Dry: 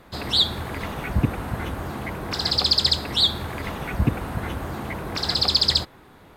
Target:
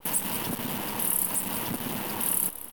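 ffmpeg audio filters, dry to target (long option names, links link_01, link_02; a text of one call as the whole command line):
ffmpeg -i in.wav -filter_complex "[0:a]equalizer=frequency=100:width_type=o:width=0.33:gain=11,equalizer=frequency=400:width_type=o:width=0.33:gain=10,equalizer=frequency=1250:width_type=o:width=0.33:gain=10,acompressor=threshold=-29dB:ratio=2.5,asplit=2[link_01][link_02];[link_02]asplit=6[link_03][link_04][link_05][link_06][link_07][link_08];[link_03]adelay=430,afreqshift=52,volume=-13.5dB[link_09];[link_04]adelay=860,afreqshift=104,volume=-18.7dB[link_10];[link_05]adelay=1290,afreqshift=156,volume=-23.9dB[link_11];[link_06]adelay=1720,afreqshift=208,volume=-29.1dB[link_12];[link_07]adelay=2150,afreqshift=260,volume=-34.3dB[link_13];[link_08]adelay=2580,afreqshift=312,volume=-39.5dB[link_14];[link_09][link_10][link_11][link_12][link_13][link_14]amix=inputs=6:normalize=0[link_15];[link_01][link_15]amix=inputs=2:normalize=0,asoftclip=type=tanh:threshold=-21dB,aresample=16000,acrusher=bits=6:dc=4:mix=0:aa=0.000001,aresample=44100,aexciter=amount=6.4:drive=5.4:freq=4400,asetrate=103194,aresample=44100,adynamicequalizer=threshold=0.00631:dfrequency=1800:dqfactor=0.7:tfrequency=1800:tqfactor=0.7:attack=5:release=100:ratio=0.375:range=2:mode=cutabove:tftype=highshelf,volume=-2.5dB" out.wav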